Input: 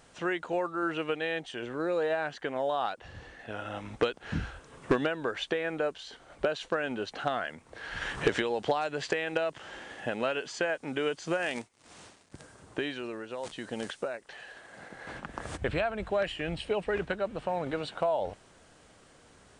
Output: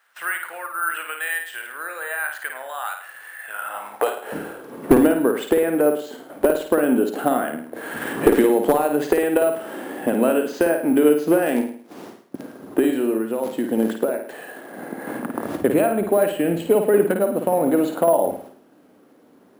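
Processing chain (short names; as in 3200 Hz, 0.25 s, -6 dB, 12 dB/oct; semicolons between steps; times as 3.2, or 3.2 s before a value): gate -54 dBFS, range -11 dB; tilt shelf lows +7.5 dB, about 1400 Hz; in parallel at -3 dB: compressor, threshold -39 dBFS, peak gain reduction 22.5 dB; on the sum: high-pass sweep 1600 Hz -> 260 Hz, 3.49–4.76; one-sided clip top -11.5 dBFS; on a send: flutter echo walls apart 9.2 m, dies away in 0.52 s; on the sum: careless resampling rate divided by 4×, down none, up hold; gain +3 dB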